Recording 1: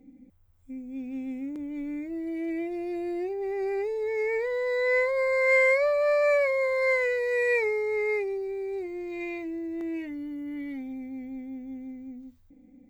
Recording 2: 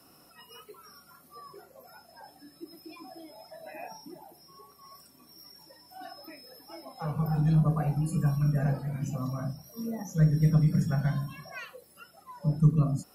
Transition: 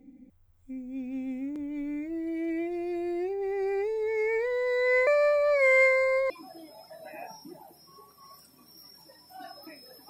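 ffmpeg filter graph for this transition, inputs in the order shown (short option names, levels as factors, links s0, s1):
-filter_complex "[0:a]apad=whole_dur=10.09,atrim=end=10.09,asplit=2[s0][s1];[s0]atrim=end=5.072[s2];[s1]atrim=start=5.068:end=6.302,asetpts=PTS-STARTPTS,areverse[s3];[1:a]atrim=start=2.908:end=6.7[s4];[s2][s3]acrossfade=d=0.004:c1=hsin:c2=hsin[s5];[s5][s4]acrossfade=d=0.004:c1=hsin:c2=hsin"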